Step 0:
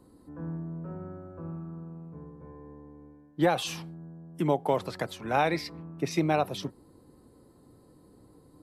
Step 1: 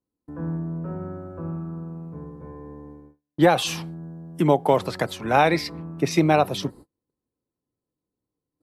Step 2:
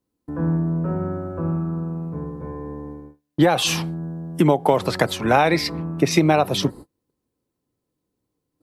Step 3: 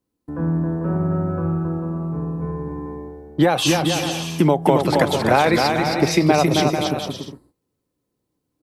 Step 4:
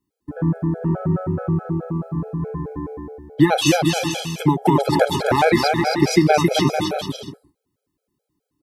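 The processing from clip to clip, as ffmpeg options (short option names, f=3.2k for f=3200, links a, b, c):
-af "agate=range=-37dB:threshold=-49dB:ratio=16:detection=peak,volume=7.5dB"
-af "acompressor=threshold=-20dB:ratio=5,volume=7.5dB"
-af "aecho=1:1:270|445.5|559.6|633.7|681.9:0.631|0.398|0.251|0.158|0.1"
-af "afftfilt=real='re*gt(sin(2*PI*4.7*pts/sr)*(1-2*mod(floor(b*sr/1024/430),2)),0)':imag='im*gt(sin(2*PI*4.7*pts/sr)*(1-2*mod(floor(b*sr/1024/430),2)),0)':win_size=1024:overlap=0.75,volume=3dB"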